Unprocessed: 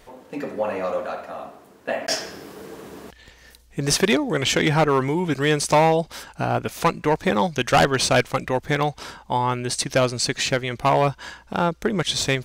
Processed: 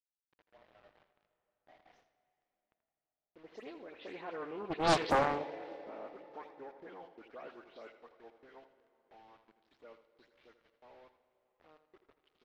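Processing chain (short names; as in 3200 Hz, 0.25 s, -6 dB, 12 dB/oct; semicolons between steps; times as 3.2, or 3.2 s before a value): spectral delay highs late, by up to 0.147 s; Doppler pass-by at 4.97, 39 m/s, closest 2.1 m; HPF 280 Hz 24 dB/oct; high shelf 2300 Hz -3.5 dB; in parallel at -3 dB: level quantiser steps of 19 dB; on the sum: bit-crush 10-bit; air absorption 300 m; feedback echo 82 ms, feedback 31%, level -12 dB; on a send at -14.5 dB: reverb RT60 3.9 s, pre-delay 80 ms; on the sum: Doppler distortion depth 0.99 ms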